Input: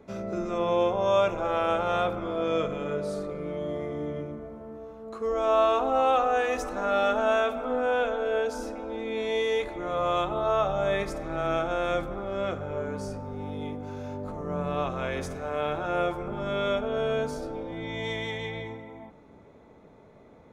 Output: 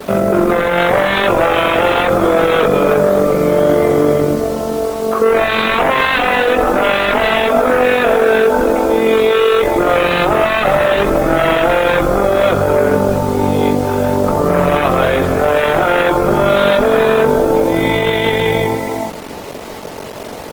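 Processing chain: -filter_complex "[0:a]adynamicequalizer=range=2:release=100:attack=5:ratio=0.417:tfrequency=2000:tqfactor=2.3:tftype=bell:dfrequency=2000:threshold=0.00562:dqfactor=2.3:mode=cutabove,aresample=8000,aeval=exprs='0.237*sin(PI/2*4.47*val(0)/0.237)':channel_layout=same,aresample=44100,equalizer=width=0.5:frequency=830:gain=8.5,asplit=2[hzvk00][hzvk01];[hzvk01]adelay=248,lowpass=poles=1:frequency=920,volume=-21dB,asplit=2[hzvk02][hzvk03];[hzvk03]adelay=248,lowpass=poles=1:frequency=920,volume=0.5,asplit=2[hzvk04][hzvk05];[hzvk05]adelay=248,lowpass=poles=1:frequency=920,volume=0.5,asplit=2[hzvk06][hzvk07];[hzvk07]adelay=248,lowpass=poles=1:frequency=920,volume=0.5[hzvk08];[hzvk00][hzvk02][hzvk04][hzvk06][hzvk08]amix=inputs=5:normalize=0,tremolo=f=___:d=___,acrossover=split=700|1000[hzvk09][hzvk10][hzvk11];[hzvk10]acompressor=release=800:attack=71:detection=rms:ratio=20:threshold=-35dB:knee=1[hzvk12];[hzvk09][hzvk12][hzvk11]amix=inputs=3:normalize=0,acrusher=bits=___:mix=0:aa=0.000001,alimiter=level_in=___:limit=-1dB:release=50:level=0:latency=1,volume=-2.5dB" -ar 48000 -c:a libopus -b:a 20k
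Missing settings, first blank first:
46, 0.571, 5, 7.5dB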